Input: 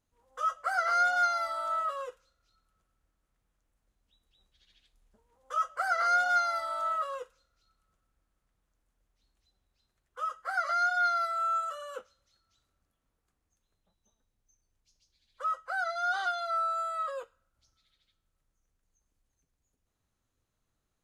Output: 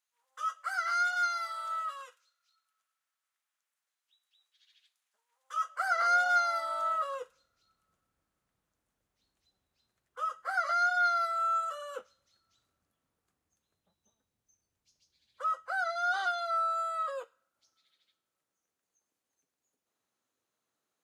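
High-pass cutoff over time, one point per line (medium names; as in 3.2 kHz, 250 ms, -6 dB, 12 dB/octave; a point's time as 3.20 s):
5.54 s 1.4 kHz
6.17 s 340 Hz
6.85 s 98 Hz
16.29 s 98 Hz
16.87 s 300 Hz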